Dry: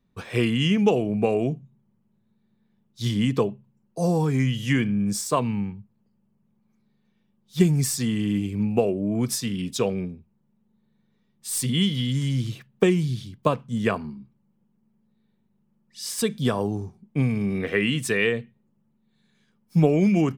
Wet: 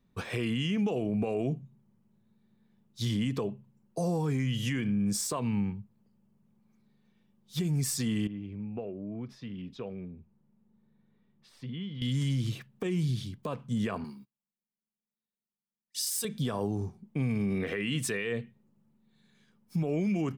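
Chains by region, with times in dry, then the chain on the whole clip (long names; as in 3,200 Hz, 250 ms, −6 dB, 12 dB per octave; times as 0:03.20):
0:08.27–0:12.02: downward compressor 2 to 1, threshold −46 dBFS + high-frequency loss of the air 300 metres
0:14.04–0:16.25: RIAA equalisation recording + noise gate −54 dBFS, range −25 dB
whole clip: downward compressor, threshold −24 dBFS; brickwall limiter −22.5 dBFS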